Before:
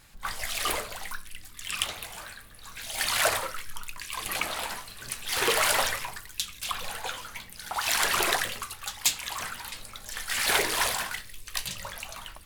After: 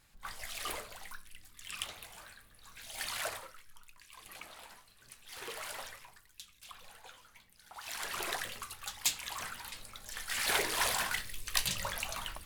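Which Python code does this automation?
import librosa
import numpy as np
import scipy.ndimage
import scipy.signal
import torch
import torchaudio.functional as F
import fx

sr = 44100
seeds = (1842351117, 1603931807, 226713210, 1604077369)

y = fx.gain(x, sr, db=fx.line((3.04, -10.5), (3.63, -19.0), (7.67, -19.0), (8.72, -6.5), (10.73, -6.5), (11.21, 1.0)))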